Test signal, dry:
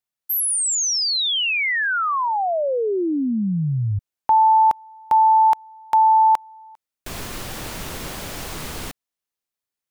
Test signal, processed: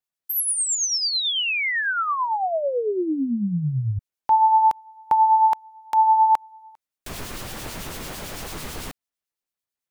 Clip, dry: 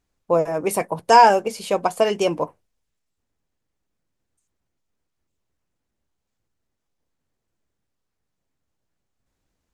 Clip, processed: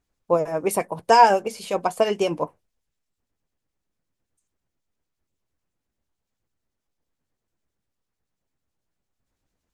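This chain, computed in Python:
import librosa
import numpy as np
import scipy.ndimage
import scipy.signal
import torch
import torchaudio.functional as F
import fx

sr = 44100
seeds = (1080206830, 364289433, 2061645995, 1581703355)

y = fx.harmonic_tremolo(x, sr, hz=9.0, depth_pct=50, crossover_hz=2400.0)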